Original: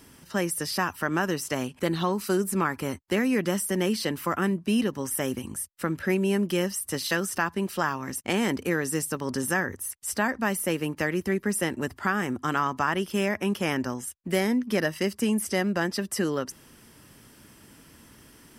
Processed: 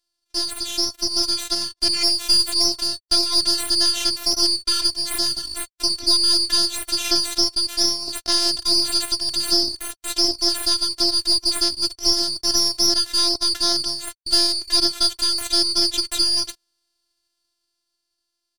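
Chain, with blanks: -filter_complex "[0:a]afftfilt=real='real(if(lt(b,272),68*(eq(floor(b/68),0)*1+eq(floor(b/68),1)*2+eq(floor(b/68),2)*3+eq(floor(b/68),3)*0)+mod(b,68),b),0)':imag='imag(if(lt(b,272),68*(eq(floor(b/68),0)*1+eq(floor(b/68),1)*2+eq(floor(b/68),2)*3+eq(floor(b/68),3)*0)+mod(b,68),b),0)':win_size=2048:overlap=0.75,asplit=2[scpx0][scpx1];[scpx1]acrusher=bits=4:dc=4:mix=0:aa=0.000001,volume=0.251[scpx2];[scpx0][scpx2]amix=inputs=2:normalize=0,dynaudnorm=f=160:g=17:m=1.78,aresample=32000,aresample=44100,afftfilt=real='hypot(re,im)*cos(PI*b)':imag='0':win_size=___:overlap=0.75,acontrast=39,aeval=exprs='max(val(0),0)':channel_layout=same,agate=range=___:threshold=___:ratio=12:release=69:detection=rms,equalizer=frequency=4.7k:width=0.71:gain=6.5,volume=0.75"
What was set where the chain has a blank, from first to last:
512, 0.0398, 0.0141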